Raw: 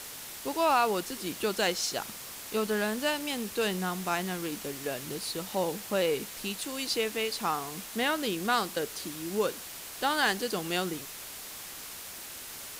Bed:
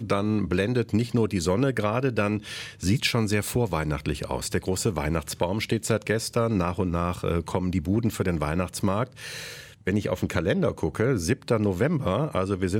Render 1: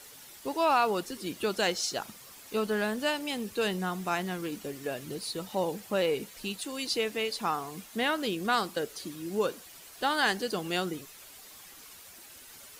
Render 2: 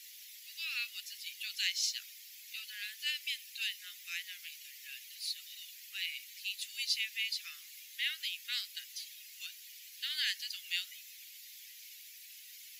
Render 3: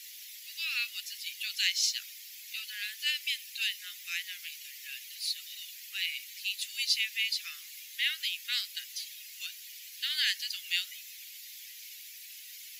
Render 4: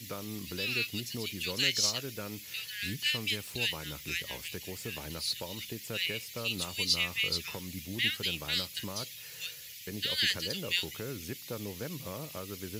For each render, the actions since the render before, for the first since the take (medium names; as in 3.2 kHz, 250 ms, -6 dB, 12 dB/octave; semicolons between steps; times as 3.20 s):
noise reduction 10 dB, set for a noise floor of -43 dBFS
steep high-pass 2 kHz 48 dB/octave; peaking EQ 8.8 kHz -12 dB 0.3 oct
trim +5 dB
add bed -16.5 dB